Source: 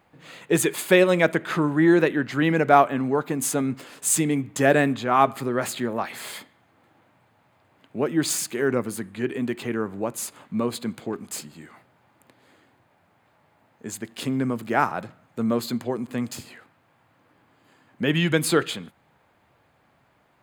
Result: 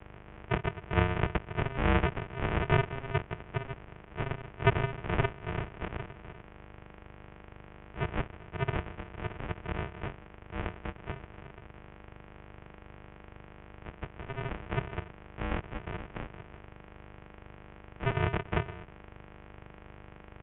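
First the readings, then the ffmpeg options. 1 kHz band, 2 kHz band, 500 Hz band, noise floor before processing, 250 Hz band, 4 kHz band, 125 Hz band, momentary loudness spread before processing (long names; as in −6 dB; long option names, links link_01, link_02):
−11.0 dB, −9.0 dB, −13.0 dB, −63 dBFS, −15.0 dB, −12.0 dB, −2.0 dB, 16 LU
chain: -af "bandreject=frequency=1300:width=9.9,aeval=exprs='val(0)+0.0112*(sin(2*PI*50*n/s)+sin(2*PI*2*50*n/s)/2+sin(2*PI*3*50*n/s)/3+sin(2*PI*4*50*n/s)/4+sin(2*PI*5*50*n/s)/5)':channel_layout=same,aresample=8000,acrusher=samples=29:mix=1:aa=0.000001,aresample=44100,highpass=frequency=220:width_type=q:width=0.5412,highpass=frequency=220:width_type=q:width=1.307,lowpass=frequency=3000:width_type=q:width=0.5176,lowpass=frequency=3000:width_type=q:width=0.7071,lowpass=frequency=3000:width_type=q:width=1.932,afreqshift=-290"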